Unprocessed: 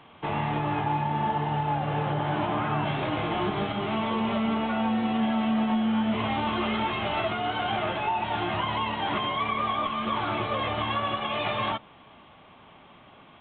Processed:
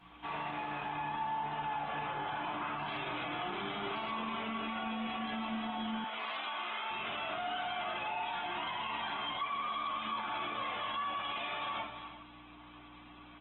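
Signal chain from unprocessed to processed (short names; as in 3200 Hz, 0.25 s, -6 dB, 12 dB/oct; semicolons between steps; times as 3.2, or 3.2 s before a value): 4.33–5.54 dynamic EQ 840 Hz, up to -4 dB, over -45 dBFS, Q 5.4; hum 60 Hz, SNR 11 dB; LPF 1400 Hz 6 dB/oct; differentiator; resonator 720 Hz, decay 0.2 s, harmonics all, mix 30%; echo 0.346 s -16.5 dB; shoebox room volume 640 m³, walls furnished, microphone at 8.5 m; limiter -36 dBFS, peak gain reduction 12.5 dB; 6.04–6.91 HPF 530 Hz 12 dB/oct; gain +6.5 dB; Opus 16 kbps 48000 Hz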